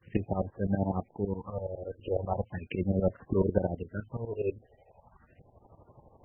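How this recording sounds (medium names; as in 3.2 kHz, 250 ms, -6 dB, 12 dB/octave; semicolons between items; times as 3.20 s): phasing stages 4, 0.38 Hz, lowest notch 170–3200 Hz; a quantiser's noise floor 10-bit, dither triangular; tremolo saw up 12 Hz, depth 95%; MP3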